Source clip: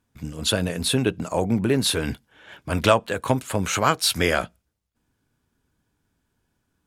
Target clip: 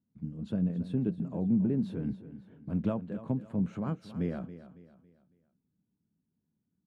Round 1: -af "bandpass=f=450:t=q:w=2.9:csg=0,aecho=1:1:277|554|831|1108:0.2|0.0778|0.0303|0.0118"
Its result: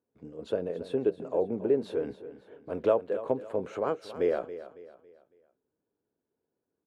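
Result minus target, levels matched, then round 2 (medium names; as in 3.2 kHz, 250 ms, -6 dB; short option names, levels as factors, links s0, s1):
500 Hz band +11.0 dB
-af "bandpass=f=190:t=q:w=2.9:csg=0,aecho=1:1:277|554|831|1108:0.2|0.0778|0.0303|0.0118"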